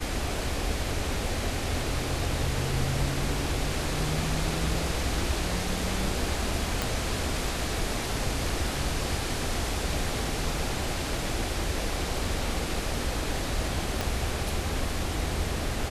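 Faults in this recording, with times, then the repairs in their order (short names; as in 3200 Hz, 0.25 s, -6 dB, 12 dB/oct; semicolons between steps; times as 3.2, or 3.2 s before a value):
6.82 pop
14.01 pop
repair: de-click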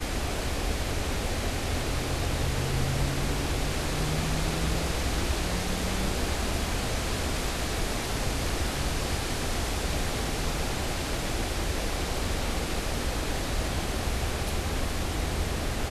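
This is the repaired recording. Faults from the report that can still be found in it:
14.01 pop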